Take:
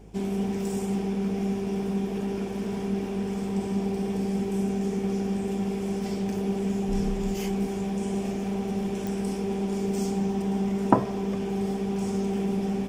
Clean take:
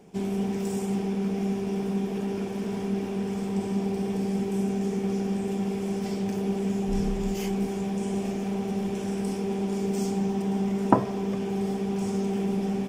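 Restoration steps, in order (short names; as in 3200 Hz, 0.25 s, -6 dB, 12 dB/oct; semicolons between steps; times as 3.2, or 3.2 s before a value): de-click; de-hum 52.1 Hz, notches 10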